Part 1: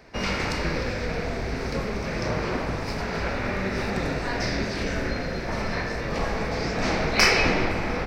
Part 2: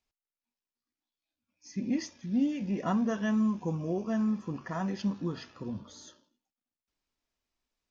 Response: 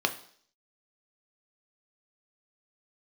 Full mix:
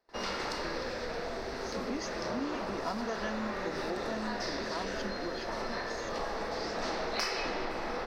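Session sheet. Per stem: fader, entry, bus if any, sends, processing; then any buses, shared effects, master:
-7.0 dB, 0.00 s, send -15 dB, none
+0.5 dB, 0.00 s, no send, high-pass 270 Hz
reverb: on, RT60 0.55 s, pre-delay 3 ms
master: gate with hold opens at -46 dBFS; peaking EQ 77 Hz -13.5 dB 2 oct; compression 4:1, threshold -31 dBFS, peak gain reduction 10 dB

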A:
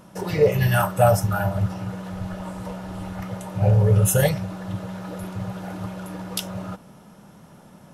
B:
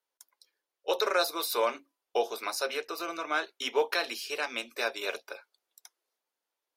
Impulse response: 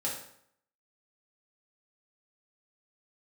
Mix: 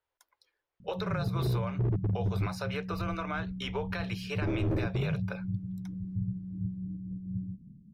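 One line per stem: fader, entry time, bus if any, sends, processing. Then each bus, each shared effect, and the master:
-0.5 dB, 0.80 s, no send, inverse Chebyshev low-pass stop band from 750 Hz, stop band 60 dB; wavefolder -19 dBFS; random flutter of the level, depth 65%
+2.5 dB, 0.00 s, no send, compression, threshold -32 dBFS, peak gain reduction 11 dB; resonant low shelf 130 Hz +13 dB, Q 1.5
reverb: none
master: tone controls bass +1 dB, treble -15 dB; peak limiter -23 dBFS, peak gain reduction 6.5 dB

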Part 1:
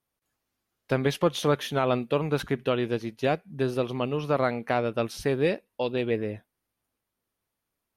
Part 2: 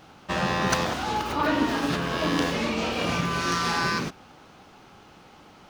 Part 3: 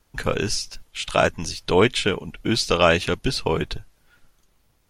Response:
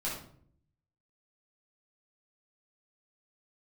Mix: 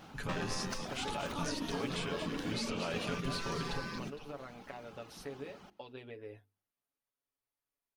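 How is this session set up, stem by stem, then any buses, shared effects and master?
-13.0 dB, 0.00 s, bus A, no send, no echo send, peaking EQ 180 Hz -13.5 dB 0.85 oct; compression 10:1, threshold -31 dBFS, peak gain reduction 13 dB
-3.0 dB, 0.00 s, no bus, no send, echo send -20.5 dB, compression 6:1, threshold -34 dBFS, peak gain reduction 14.5 dB; reverb removal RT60 1 s
-11.0 dB, 0.00 s, bus A, no send, echo send -9.5 dB, compression, threshold -23 dBFS, peak gain reduction 11.5 dB
bus A: 0.0 dB, comb 7.1 ms, depth 67%; peak limiter -29.5 dBFS, peak gain reduction 8.5 dB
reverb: none
echo: feedback delay 231 ms, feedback 42%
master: peaking EQ 210 Hz +6 dB 0.68 oct; hum notches 50/100/150/200/250/300/350/400/450 Hz

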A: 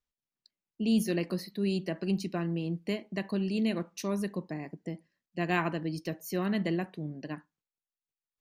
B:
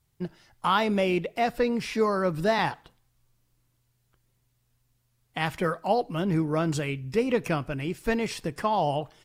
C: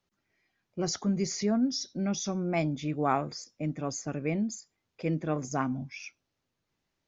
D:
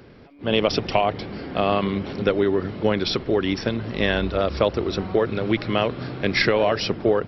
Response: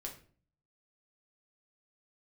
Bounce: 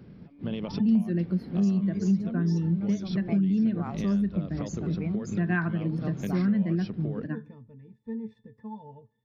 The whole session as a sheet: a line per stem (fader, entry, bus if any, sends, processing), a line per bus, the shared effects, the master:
+2.5 dB, 0.00 s, send -13 dB, peaking EQ 1.5 kHz +11 dB 0.6 oct; spectral contrast expander 1.5:1
-13.0 dB, 0.00 s, no send, pitch-class resonator A, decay 0.11 s
-7.0 dB, 0.75 s, send -12 dB, level-controlled noise filter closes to 640 Hz, open at -28.5 dBFS; reverb removal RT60 1.8 s
-12.0 dB, 0.00 s, no send, bass shelf 200 Hz +7.5 dB; compression, threshold -21 dBFS, peak gain reduction 9 dB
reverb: on, RT60 0.45 s, pre-delay 6 ms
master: peaking EQ 180 Hz +14 dB 1.1 oct; compression 2.5:1, threshold -28 dBFS, peak gain reduction 16 dB

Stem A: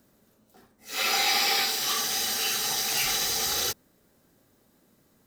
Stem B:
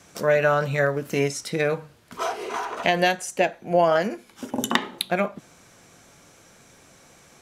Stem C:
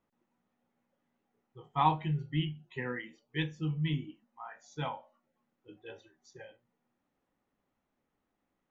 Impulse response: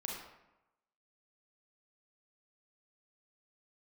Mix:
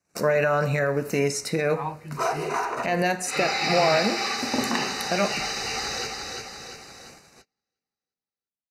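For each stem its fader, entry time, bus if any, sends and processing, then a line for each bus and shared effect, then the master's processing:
+0.5 dB, 2.35 s, no send, echo send -4 dB, low-pass 4.2 kHz 12 dB/octave
+1.0 dB, 0.00 s, send -10.5 dB, no echo send, peak limiter -16 dBFS, peak gain reduction 10.5 dB
-5.5 dB, 0.00 s, no send, no echo send, none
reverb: on, RT60 0.95 s, pre-delay 31 ms
echo: feedback delay 345 ms, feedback 51%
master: gate -46 dBFS, range -30 dB; Butterworth band-stop 3.3 kHz, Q 3.5

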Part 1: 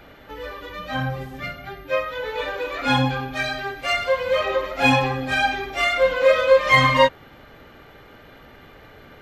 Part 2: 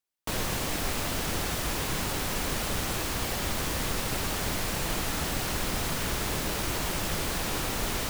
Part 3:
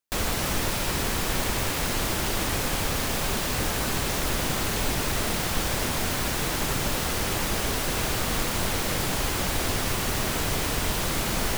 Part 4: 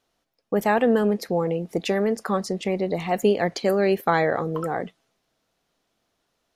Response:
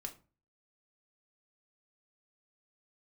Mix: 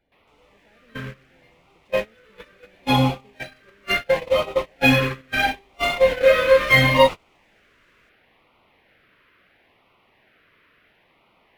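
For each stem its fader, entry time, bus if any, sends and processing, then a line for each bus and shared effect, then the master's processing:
+2.0 dB, 0.00 s, send -18 dB, none
-8.5 dB, 0.00 s, no send, none
+1.5 dB, 0.00 s, no send, low-pass 2.4 kHz 24 dB/octave; tilt EQ +4.5 dB/octave
-11.0 dB, 0.00 s, send -11.5 dB, gain riding 2 s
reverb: on, RT60 0.35 s, pre-delay 4 ms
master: gate -18 dBFS, range -28 dB; LFO notch sine 0.73 Hz 770–1700 Hz; decimation joined by straight lines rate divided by 3×

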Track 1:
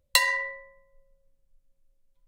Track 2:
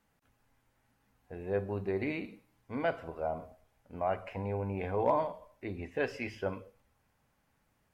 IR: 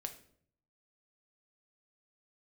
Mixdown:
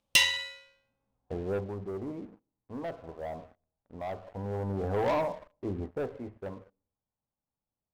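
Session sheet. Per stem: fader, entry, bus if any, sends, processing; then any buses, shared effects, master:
-6.0 dB, 0.00 s, no send, comb filter that takes the minimum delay 0.34 ms; frequency weighting D; decay stretcher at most 82 dB/s; auto duck -23 dB, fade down 1.90 s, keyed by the second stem
1.33 s -2.5 dB -> 1.76 s -12.5 dB -> 4.25 s -12.5 dB -> 4.85 s -5.5 dB -> 5.76 s -5.5 dB -> 6.40 s -13.5 dB, 0.00 s, send -22.5 dB, low-pass 1.1 kHz 24 dB/octave; waveshaping leveller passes 3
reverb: on, RT60 0.60 s, pre-delay 5 ms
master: none

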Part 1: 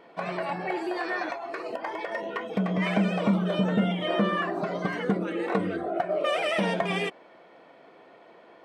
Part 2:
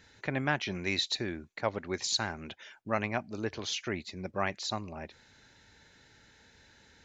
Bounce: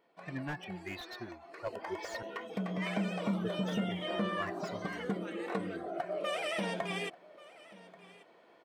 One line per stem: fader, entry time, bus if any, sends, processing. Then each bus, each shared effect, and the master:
1.39 s -19 dB -> 1.84 s -9.5 dB, 0.00 s, no send, echo send -20 dB, treble shelf 4.8 kHz +9.5 dB
-1.5 dB, 0.00 s, muted 2.23–3.39 s, no send, no echo send, expander on every frequency bin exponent 3; comb of notches 770 Hz; slew-rate limiter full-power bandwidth 23 Hz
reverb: none
echo: delay 1135 ms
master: none

